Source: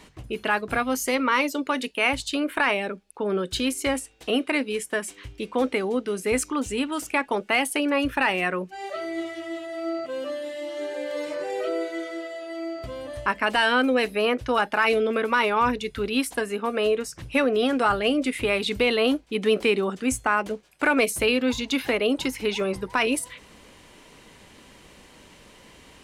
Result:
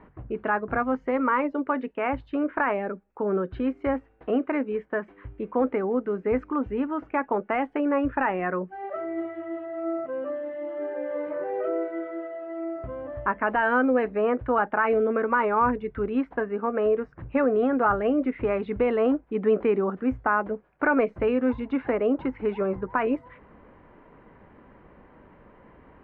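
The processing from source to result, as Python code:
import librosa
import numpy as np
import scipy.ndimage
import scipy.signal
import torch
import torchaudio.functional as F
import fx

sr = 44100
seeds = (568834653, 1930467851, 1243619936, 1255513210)

y = scipy.signal.sosfilt(scipy.signal.butter(4, 1600.0, 'lowpass', fs=sr, output='sos'), x)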